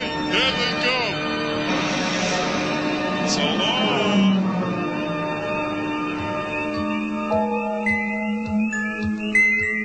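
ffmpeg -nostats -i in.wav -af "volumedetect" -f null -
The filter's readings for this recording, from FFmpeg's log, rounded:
mean_volume: -22.2 dB
max_volume: -8.3 dB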